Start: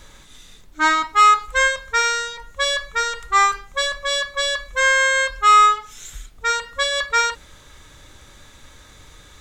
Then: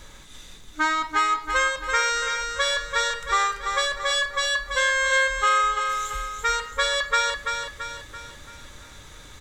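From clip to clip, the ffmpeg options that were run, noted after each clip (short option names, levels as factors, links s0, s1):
-filter_complex "[0:a]acompressor=threshold=0.1:ratio=5,asplit=2[s0][s1];[s1]aecho=0:1:336|672|1008|1344|1680|2016:0.501|0.241|0.115|0.0554|0.0266|0.0128[s2];[s0][s2]amix=inputs=2:normalize=0"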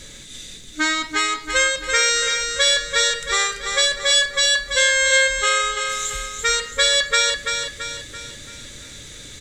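-af "equalizer=f=125:t=o:w=1:g=6,equalizer=f=250:t=o:w=1:g=6,equalizer=f=500:t=o:w=1:g=6,equalizer=f=1000:t=o:w=1:g=-10,equalizer=f=2000:t=o:w=1:g=6,equalizer=f=4000:t=o:w=1:g=7,equalizer=f=8000:t=o:w=1:g=11"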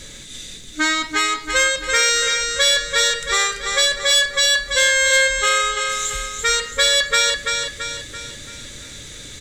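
-af "acontrast=71,volume=0.596"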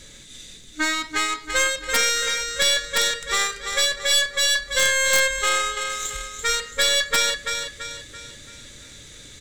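-af "aeval=exprs='(mod(2.37*val(0)+1,2)-1)/2.37':c=same,aeval=exprs='0.447*(cos(1*acos(clip(val(0)/0.447,-1,1)))-cos(1*PI/2))+0.1*(cos(2*acos(clip(val(0)/0.447,-1,1)))-cos(2*PI/2))+0.0708*(cos(3*acos(clip(val(0)/0.447,-1,1)))-cos(3*PI/2))+0.0282*(cos(5*acos(clip(val(0)/0.447,-1,1)))-cos(5*PI/2))+0.02*(cos(7*acos(clip(val(0)/0.447,-1,1)))-cos(7*PI/2))':c=same,volume=0.841"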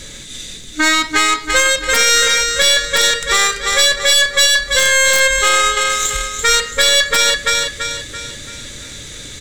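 -af "alimiter=level_in=4.22:limit=0.891:release=50:level=0:latency=1,volume=0.891"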